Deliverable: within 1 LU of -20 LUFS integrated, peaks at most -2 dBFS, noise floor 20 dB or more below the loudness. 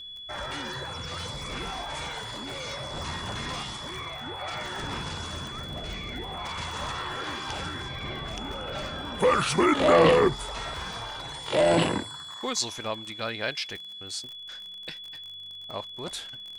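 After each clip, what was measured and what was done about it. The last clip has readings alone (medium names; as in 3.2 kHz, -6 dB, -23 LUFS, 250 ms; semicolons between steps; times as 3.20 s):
tick rate 39 per s; steady tone 3.4 kHz; tone level -39 dBFS; loudness -29.0 LUFS; peak level -7.5 dBFS; loudness target -20.0 LUFS
-> de-click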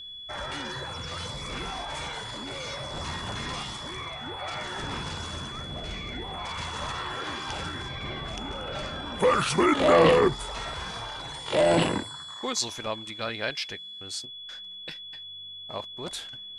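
tick rate 0 per s; steady tone 3.4 kHz; tone level -39 dBFS
-> band-stop 3.4 kHz, Q 30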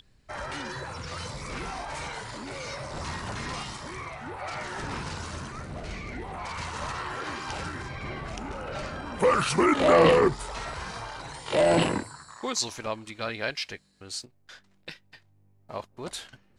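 steady tone not found; loudness -29.5 LUFS; peak level -7.5 dBFS; loudness target -20.0 LUFS
-> trim +9.5 dB; peak limiter -2 dBFS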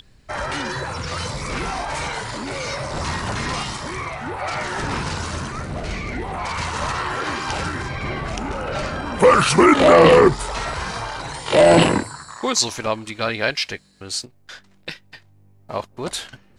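loudness -20.5 LUFS; peak level -2.0 dBFS; noise floor -53 dBFS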